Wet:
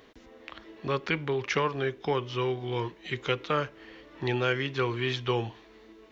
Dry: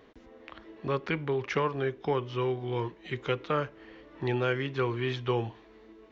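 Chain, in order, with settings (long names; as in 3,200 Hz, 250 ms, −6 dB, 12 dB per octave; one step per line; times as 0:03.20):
high-shelf EQ 2,500 Hz +9.5 dB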